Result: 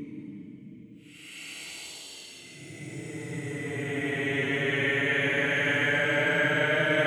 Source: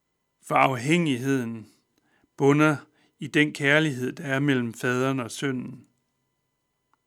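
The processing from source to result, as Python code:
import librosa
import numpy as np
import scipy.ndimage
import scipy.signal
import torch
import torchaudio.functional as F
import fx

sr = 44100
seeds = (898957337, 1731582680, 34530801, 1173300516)

y = fx.paulstretch(x, sr, seeds[0], factor=26.0, window_s=0.05, from_s=3.49)
y = y * librosa.db_to_amplitude(-7.0)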